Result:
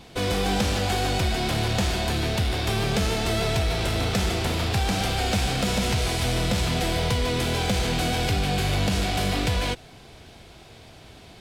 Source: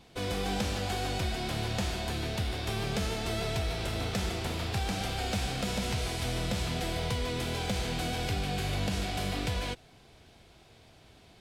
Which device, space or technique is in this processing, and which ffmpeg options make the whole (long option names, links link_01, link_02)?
parallel distortion: -filter_complex "[0:a]asplit=2[link_01][link_02];[link_02]asoftclip=type=hard:threshold=-36.5dB,volume=-4.5dB[link_03];[link_01][link_03]amix=inputs=2:normalize=0,volume=6dB"